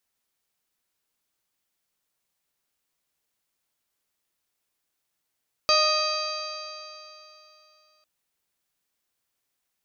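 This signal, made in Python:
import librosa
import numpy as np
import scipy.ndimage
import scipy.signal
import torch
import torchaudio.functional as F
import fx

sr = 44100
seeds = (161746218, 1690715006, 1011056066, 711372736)

y = fx.additive_stiff(sr, length_s=2.35, hz=613.0, level_db=-23, upper_db=(1.5, -14.5, -4.0, -12, -8.5, 3.5, -13.5, -10.0), decay_s=3.02, stiffness=0.0037)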